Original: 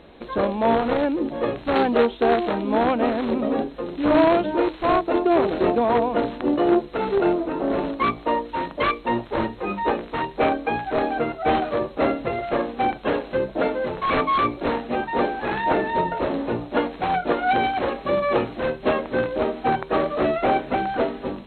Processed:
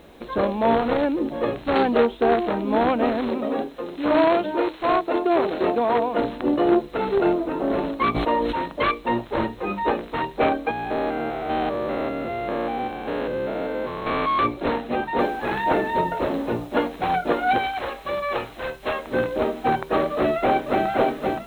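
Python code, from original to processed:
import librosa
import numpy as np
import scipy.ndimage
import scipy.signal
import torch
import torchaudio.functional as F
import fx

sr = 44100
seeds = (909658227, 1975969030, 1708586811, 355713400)

y = fx.lowpass(x, sr, hz=3200.0, slope=6, at=(2.0, 2.67))
y = fx.low_shelf(y, sr, hz=180.0, db=-10.5, at=(3.29, 6.19))
y = fx.sustainer(y, sr, db_per_s=27.0, at=(8.14, 8.54), fade=0.02)
y = fx.spec_steps(y, sr, hold_ms=200, at=(10.71, 14.39))
y = fx.noise_floor_step(y, sr, seeds[0], at_s=15.19, before_db=-66, after_db=-58, tilt_db=0.0)
y = fx.peak_eq(y, sr, hz=230.0, db=-12.5, octaves=2.4, at=(17.58, 19.07))
y = fx.echo_throw(y, sr, start_s=20.14, length_s=0.72, ms=520, feedback_pct=40, wet_db=-4.5)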